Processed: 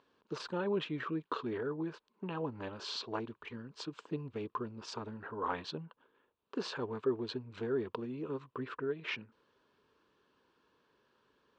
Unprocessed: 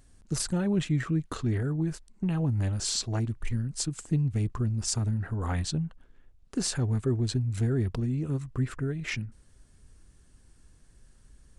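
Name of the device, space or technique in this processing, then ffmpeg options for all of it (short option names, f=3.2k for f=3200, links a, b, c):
phone earpiece: -af "highpass=420,equalizer=f=440:t=q:w=4:g=6,equalizer=f=720:t=q:w=4:g=-7,equalizer=f=1k:t=q:w=4:g=8,equalizer=f=2k:t=q:w=4:g=-9,lowpass=f=3.6k:w=0.5412,lowpass=f=3.6k:w=1.3066"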